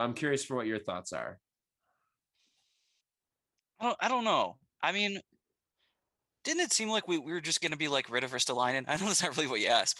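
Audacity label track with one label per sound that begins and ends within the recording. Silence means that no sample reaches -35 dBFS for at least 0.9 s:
3.810000	5.190000	sound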